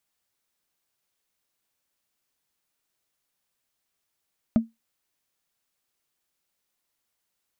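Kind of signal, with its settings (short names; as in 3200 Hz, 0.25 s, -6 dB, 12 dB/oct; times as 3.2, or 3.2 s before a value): wood hit, lowest mode 227 Hz, decay 0.18 s, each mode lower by 11 dB, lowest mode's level -11.5 dB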